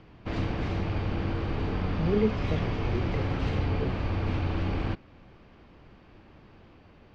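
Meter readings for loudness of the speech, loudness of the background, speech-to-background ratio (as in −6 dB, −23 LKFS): −33.5 LKFS, −31.0 LKFS, −2.5 dB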